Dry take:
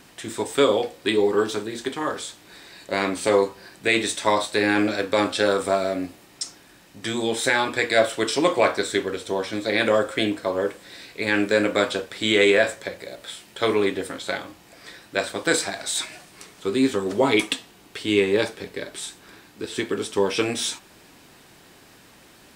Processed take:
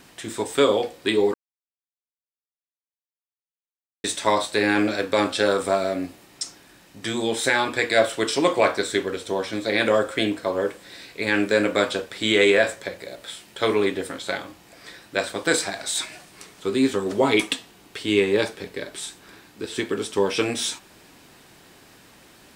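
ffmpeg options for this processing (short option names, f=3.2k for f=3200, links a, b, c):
-filter_complex "[0:a]asplit=3[a][b][c];[a]atrim=end=1.34,asetpts=PTS-STARTPTS,afade=t=out:st=1.336:d=0.004:c=hsin[d];[b]atrim=start=1.34:end=4.04,asetpts=PTS-STARTPTS,volume=0[e];[c]atrim=start=4.04,asetpts=PTS-STARTPTS,afade=t=in:d=0.004:c=hsin[f];[d][e][f]concat=n=3:v=0:a=1"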